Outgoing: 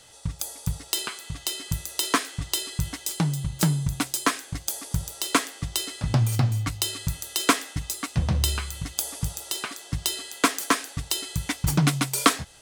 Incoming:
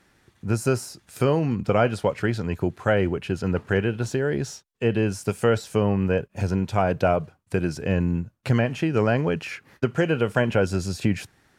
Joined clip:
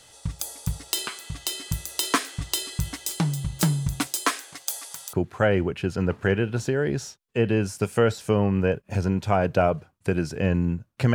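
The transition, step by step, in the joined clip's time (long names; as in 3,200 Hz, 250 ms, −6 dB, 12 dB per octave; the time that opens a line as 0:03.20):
outgoing
0:04.06–0:05.13: high-pass filter 250 Hz → 1,100 Hz
0:05.13: continue with incoming from 0:02.59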